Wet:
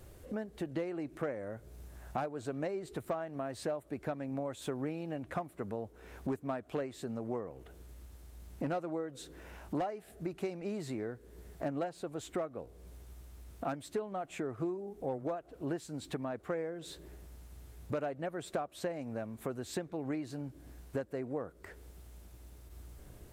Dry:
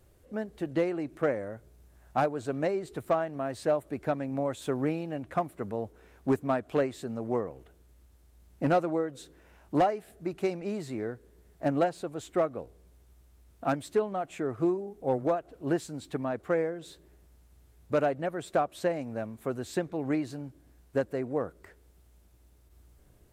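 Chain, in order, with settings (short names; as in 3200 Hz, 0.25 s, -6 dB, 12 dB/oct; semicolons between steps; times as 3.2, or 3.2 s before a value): compressor 3:1, threshold -47 dBFS, peak gain reduction 19 dB; gain +7.5 dB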